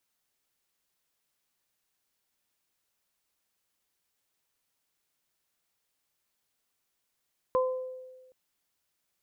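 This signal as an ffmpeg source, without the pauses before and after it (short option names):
-f lavfi -i "aevalsrc='0.0794*pow(10,-3*t/1.35)*sin(2*PI*513*t)+0.0531*pow(10,-3*t/0.52)*sin(2*PI*1026*t)':d=0.77:s=44100"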